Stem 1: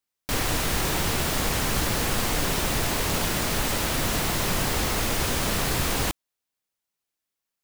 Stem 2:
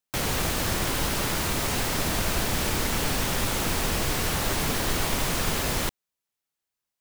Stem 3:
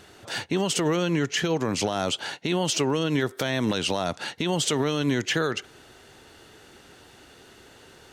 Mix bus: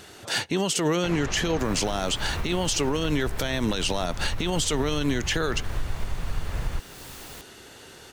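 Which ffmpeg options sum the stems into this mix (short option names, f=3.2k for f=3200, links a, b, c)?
-filter_complex "[0:a]adelay=1300,volume=-19.5dB[a];[1:a]lowpass=2k,asubboost=boost=6:cutoff=110,adelay=900,volume=1dB[b];[2:a]volume=3dB[c];[a][b]amix=inputs=2:normalize=0,acompressor=threshold=-27dB:ratio=3,volume=0dB[d];[c][d]amix=inputs=2:normalize=0,highshelf=f=4k:g=5.5,alimiter=limit=-15dB:level=0:latency=1:release=130"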